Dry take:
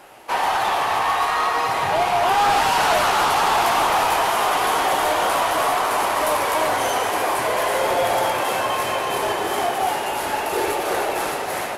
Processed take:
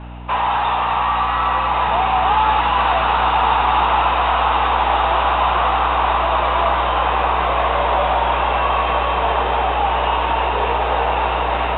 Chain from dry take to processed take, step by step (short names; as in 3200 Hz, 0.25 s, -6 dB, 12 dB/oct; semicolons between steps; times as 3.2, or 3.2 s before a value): limiter -16.5 dBFS, peak gain reduction 5.5 dB; frequency shift +51 Hz; hum 60 Hz, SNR 10 dB; rippled Chebyshev low-pass 3800 Hz, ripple 6 dB; on a send: diffused feedback echo 1.286 s, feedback 61%, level -5 dB; on the sum: gain +6.5 dB